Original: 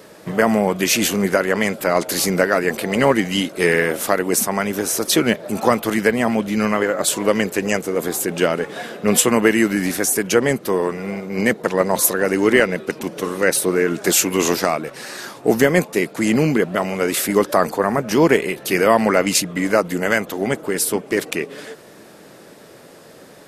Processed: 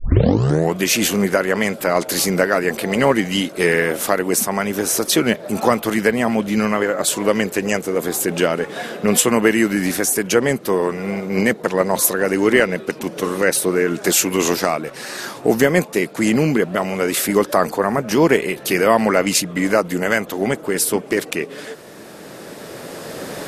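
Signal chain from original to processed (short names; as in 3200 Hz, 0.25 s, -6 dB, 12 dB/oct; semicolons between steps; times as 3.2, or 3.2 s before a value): tape start at the beginning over 0.76 s; recorder AGC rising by 7.1 dB/s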